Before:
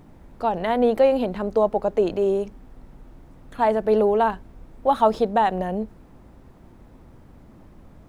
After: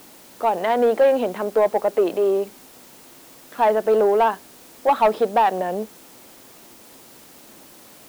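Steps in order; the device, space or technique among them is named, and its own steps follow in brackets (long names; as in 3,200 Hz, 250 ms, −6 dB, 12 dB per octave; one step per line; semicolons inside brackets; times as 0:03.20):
tape answering machine (band-pass filter 330–3,200 Hz; soft clipping −13.5 dBFS, distortion −17 dB; tape wow and flutter 25 cents; white noise bed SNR 26 dB)
level +4.5 dB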